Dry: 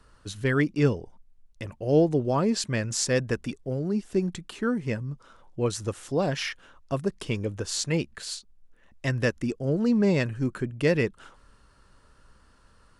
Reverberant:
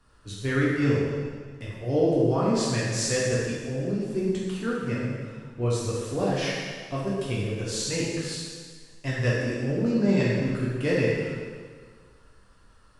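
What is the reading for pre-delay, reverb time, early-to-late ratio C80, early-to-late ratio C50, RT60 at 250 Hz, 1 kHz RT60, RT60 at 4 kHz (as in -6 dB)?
5 ms, 1.7 s, 1.0 dB, -1.5 dB, 1.7 s, 1.7 s, 1.6 s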